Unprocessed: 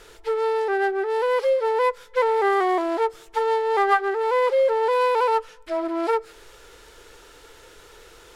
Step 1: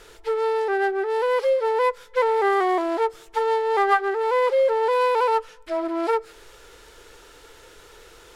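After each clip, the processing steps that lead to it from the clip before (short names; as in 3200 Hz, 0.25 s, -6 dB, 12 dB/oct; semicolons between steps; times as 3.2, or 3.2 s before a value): nothing audible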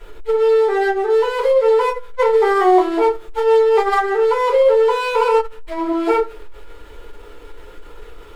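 median filter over 9 samples; shoebox room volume 130 m³, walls furnished, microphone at 4.6 m; core saturation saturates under 140 Hz; gain -3 dB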